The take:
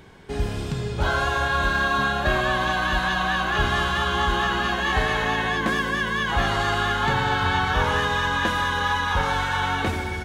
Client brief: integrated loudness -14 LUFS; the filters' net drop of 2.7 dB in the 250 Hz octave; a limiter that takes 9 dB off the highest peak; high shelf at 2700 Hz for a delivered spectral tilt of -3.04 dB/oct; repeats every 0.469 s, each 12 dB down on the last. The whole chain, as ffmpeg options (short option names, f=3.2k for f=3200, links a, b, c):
-af "equalizer=f=250:t=o:g=-4,highshelf=f=2.7k:g=8,alimiter=limit=-17dB:level=0:latency=1,aecho=1:1:469|938|1407:0.251|0.0628|0.0157,volume=10.5dB"